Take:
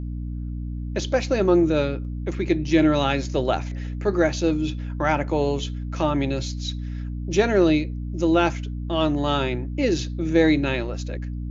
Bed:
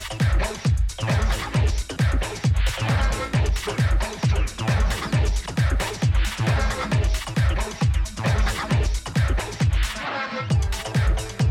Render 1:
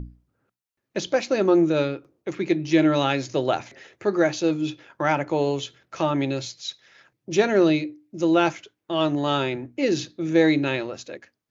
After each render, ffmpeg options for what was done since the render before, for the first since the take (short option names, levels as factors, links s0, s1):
-af "bandreject=f=60:t=h:w=6,bandreject=f=120:t=h:w=6,bandreject=f=180:t=h:w=6,bandreject=f=240:t=h:w=6,bandreject=f=300:t=h:w=6"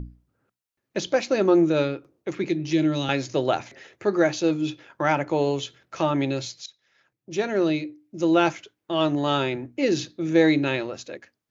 -filter_complex "[0:a]asettb=1/sr,asplit=3[s0][s1][s2];[s0]atrim=end=2.444[s3];[s1]atrim=start=2.44:end=3.09,asetpts=PTS-STARTPTS,afade=t=in:d=0.004:c=qsin,afade=t=out:st=0.646:d=0.004:c=qsin,acrossover=split=350|3000[s4][s5][s6];[s5]acompressor=threshold=0.0251:ratio=6:attack=3.2:release=140:knee=2.83:detection=peak[s7];[s4][s7][s6]amix=inputs=3:normalize=0[s8];[s2]atrim=start=3.086[s9];[s3][s8]acrossfade=d=0.004:c1=hsin:c2=qsin[s10];[s10][s9]acrossfade=d=0.004:c1=qsin:c2=hsin,asplit=2[s11][s12];[s11]atrim=end=6.66,asetpts=PTS-STARTPTS,afade=t=out:st=6.656:d=0.004:c=hsin:silence=0.133352[s13];[s12]atrim=start=6.66,asetpts=PTS-STARTPTS,afade=t=in:d=1.73:silence=0.133352[s14];[s13][s14]concat=n=2:v=0:a=1"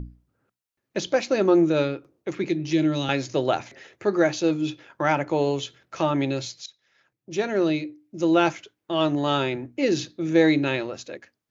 -af anull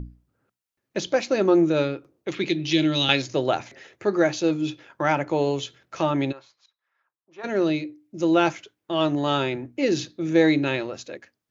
-filter_complex "[0:a]asettb=1/sr,asplit=3[s0][s1][s2];[s0]atrim=end=2.284[s3];[s1]atrim=start=2.28:end=3.22,asetpts=PTS-STARTPTS,afade=t=in:d=0.004:c=qsin,afade=t=out:st=0.936:d=0.004:c=qsin,equalizer=f=3400:t=o:w=1.1:g=12[s4];[s2]atrim=start=3.216[s5];[s3][s4]acrossfade=d=0.004:c1=hsin:c2=qsin[s6];[s6][s5]acrossfade=d=0.004:c1=qsin:c2=hsin,asplit=3[s7][s8][s9];[s7]afade=t=out:st=6.31:d=0.02[s10];[s8]bandpass=f=1100:t=q:w=3.1,afade=t=in:st=6.31:d=0.02,afade=t=out:st=7.43:d=0.02[s11];[s9]afade=t=in:st=7.43:d=0.02[s12];[s10][s11][s12]amix=inputs=3:normalize=0"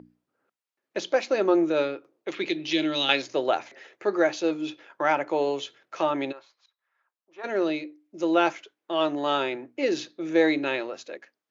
-af "highpass=370,highshelf=f=5700:g=-10"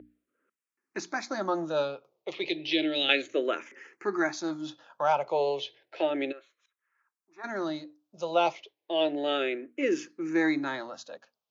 -filter_complex "[0:a]asplit=2[s0][s1];[s1]afreqshift=-0.32[s2];[s0][s2]amix=inputs=2:normalize=1"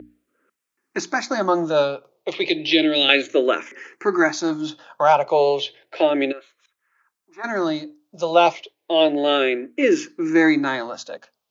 -af "volume=3.16,alimiter=limit=0.794:level=0:latency=1"